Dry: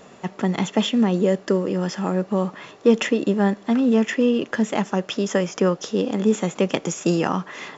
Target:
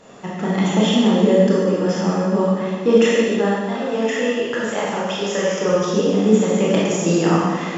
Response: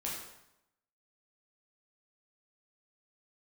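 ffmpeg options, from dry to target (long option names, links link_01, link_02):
-filter_complex "[0:a]asettb=1/sr,asplit=3[link_01][link_02][link_03];[link_01]atrim=end=3.074[link_04];[link_02]atrim=start=3.07:end=5.69,asetpts=PTS-STARTPTS,afade=type=in:duration=0.004:curve=qsin,afade=type=out:start_time=2.616:duration=0.004:curve=qsin,equalizer=frequency=240:width_type=o:width=1:gain=-11.5[link_05];[link_03]atrim=start=5.686[link_06];[link_04][link_05]acrossfade=duration=0.004:curve1=hsin:curve2=qsin[link_07];[link_07][link_06]acrossfade=duration=0.004:curve1=qsin:curve2=hsin[link_08];[1:a]atrim=start_sample=2205,asetrate=22491,aresample=44100[link_09];[link_08][link_09]afir=irnorm=-1:irlink=0,volume=-2.5dB"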